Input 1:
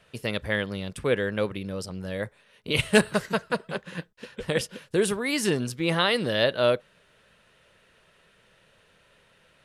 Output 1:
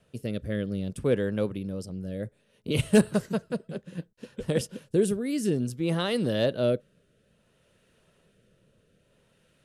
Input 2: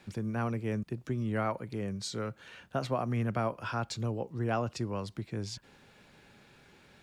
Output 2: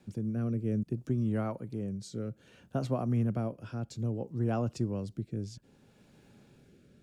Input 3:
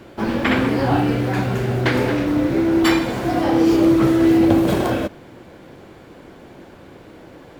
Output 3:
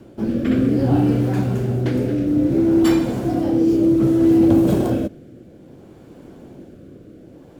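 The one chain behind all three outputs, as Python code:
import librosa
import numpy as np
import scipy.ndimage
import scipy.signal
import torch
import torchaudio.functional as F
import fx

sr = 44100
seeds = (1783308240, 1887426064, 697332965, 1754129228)

y = fx.rotary(x, sr, hz=0.6)
y = 10.0 ** (-6.0 / 20.0) * np.tanh(y / 10.0 ** (-6.0 / 20.0))
y = fx.graphic_eq(y, sr, hz=(125, 250, 1000, 2000, 4000), db=(3, 4, -5, -8, -5))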